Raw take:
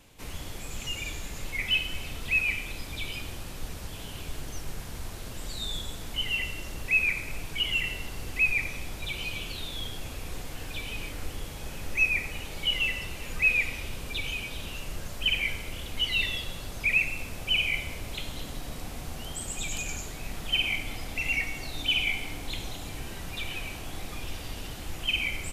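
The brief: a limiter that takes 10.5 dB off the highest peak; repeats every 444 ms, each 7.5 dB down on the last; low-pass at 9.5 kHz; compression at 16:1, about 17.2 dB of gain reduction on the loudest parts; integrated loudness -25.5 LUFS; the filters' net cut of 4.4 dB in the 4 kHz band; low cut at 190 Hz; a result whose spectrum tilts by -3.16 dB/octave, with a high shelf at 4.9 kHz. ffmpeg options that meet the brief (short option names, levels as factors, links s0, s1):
-af "highpass=190,lowpass=9500,equalizer=f=4000:t=o:g=-9,highshelf=f=4900:g=4.5,acompressor=threshold=0.0112:ratio=16,alimiter=level_in=5.01:limit=0.0631:level=0:latency=1,volume=0.2,aecho=1:1:444|888|1332|1776|2220:0.422|0.177|0.0744|0.0312|0.0131,volume=8.91"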